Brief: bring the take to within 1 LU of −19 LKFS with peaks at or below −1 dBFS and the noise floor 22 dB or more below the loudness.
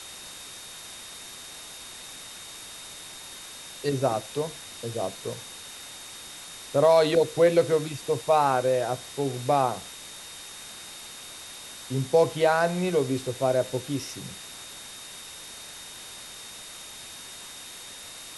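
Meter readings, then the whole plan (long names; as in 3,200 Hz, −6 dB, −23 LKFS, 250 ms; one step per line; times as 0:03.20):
interfering tone 3,700 Hz; level of the tone −46 dBFS; background noise floor −43 dBFS; target noise floor −48 dBFS; integrated loudness −25.5 LKFS; sample peak −8.0 dBFS; target loudness −19.0 LKFS
→ notch filter 3,700 Hz, Q 30
broadband denoise 6 dB, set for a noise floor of −43 dBFS
level +6.5 dB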